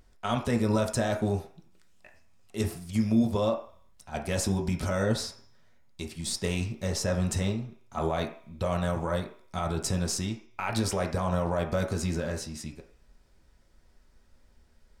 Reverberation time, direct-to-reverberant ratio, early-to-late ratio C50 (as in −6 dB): 0.50 s, 2.0 dB, 9.0 dB